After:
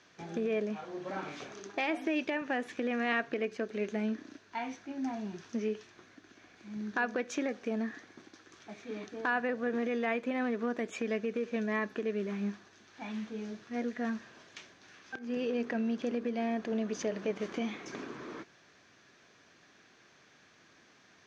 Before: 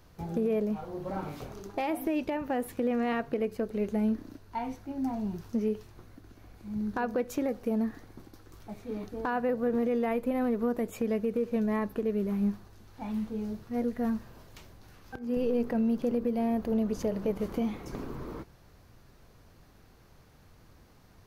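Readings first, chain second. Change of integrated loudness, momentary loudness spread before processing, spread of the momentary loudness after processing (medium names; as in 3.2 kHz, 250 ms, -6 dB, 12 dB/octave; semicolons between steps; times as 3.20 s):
-3.5 dB, 11 LU, 13 LU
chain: cabinet simulation 280–6700 Hz, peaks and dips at 500 Hz -5 dB, 870 Hz -5 dB, 1.7 kHz +8 dB, 2.4 kHz +6 dB, 3.4 kHz +6 dB, 6.2 kHz +7 dB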